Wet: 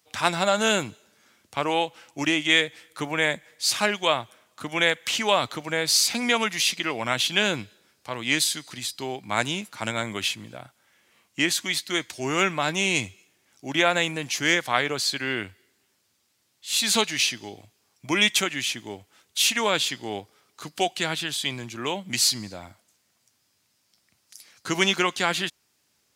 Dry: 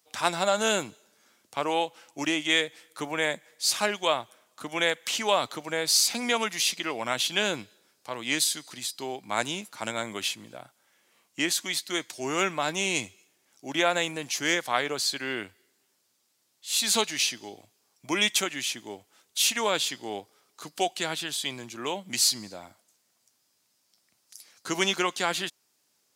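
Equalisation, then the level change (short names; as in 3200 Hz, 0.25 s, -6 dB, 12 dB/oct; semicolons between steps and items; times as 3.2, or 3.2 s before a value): bell 60 Hz +8.5 dB 1.3 oct; low shelf 210 Hz +9.5 dB; bell 2200 Hz +5 dB 1.9 oct; 0.0 dB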